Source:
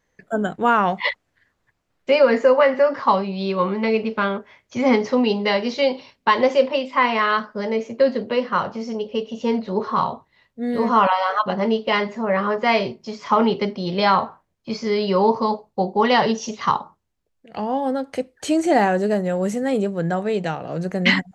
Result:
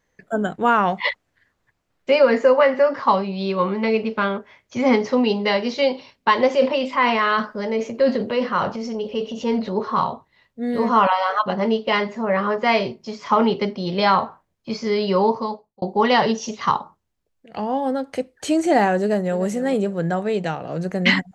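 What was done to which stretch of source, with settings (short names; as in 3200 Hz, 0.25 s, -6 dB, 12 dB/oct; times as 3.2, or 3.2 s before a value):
6.51–9.78 transient shaper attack -2 dB, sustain +6 dB
15.18–15.82 fade out
19.01–19.44 echo throw 0.3 s, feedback 35%, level -15 dB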